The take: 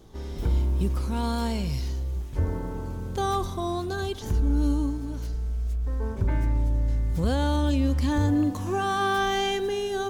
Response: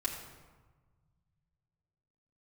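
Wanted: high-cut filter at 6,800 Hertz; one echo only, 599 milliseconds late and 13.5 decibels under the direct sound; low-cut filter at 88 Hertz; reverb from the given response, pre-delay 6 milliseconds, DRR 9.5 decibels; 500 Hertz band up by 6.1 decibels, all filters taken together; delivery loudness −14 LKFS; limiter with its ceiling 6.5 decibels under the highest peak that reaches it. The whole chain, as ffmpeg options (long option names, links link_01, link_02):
-filter_complex "[0:a]highpass=88,lowpass=6800,equalizer=frequency=500:width_type=o:gain=8.5,alimiter=limit=-18.5dB:level=0:latency=1,aecho=1:1:599:0.211,asplit=2[link_01][link_02];[1:a]atrim=start_sample=2205,adelay=6[link_03];[link_02][link_03]afir=irnorm=-1:irlink=0,volume=-12.5dB[link_04];[link_01][link_04]amix=inputs=2:normalize=0,volume=14.5dB"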